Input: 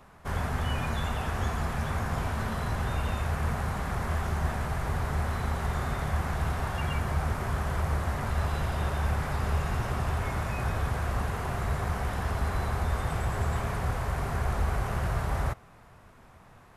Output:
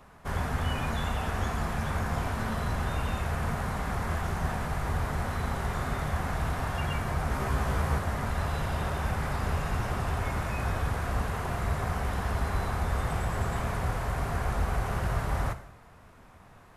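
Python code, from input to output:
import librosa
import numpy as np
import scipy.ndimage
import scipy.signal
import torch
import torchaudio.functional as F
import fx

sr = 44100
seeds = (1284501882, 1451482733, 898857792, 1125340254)

y = fx.doubler(x, sr, ms=15.0, db=-2.5, at=(7.3, 7.99))
y = fx.rev_gated(y, sr, seeds[0], gate_ms=270, shape='falling', drr_db=10.0)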